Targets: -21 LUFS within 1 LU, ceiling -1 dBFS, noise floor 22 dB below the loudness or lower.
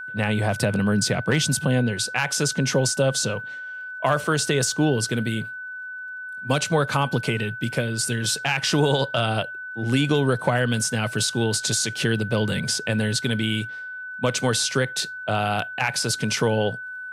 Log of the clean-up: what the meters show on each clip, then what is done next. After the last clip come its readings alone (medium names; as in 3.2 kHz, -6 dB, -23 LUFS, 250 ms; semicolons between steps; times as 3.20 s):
tick rate 22 per s; steady tone 1.5 kHz; tone level -32 dBFS; loudness -23.0 LUFS; peak level -7.0 dBFS; loudness target -21.0 LUFS
-> de-click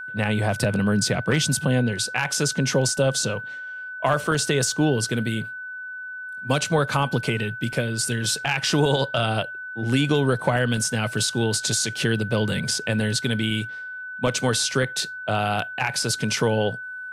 tick rate 0.12 per s; steady tone 1.5 kHz; tone level -32 dBFS
-> band-stop 1.5 kHz, Q 30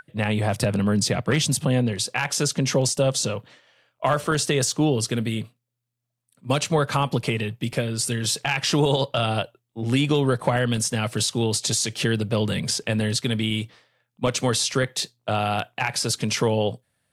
steady tone not found; loudness -23.5 LUFS; peak level -7.0 dBFS; loudness target -21.0 LUFS
-> trim +2.5 dB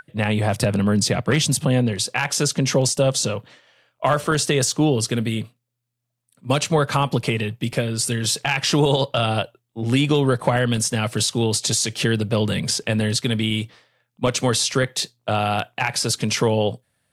loudness -21.0 LUFS; peak level -4.5 dBFS; noise floor -77 dBFS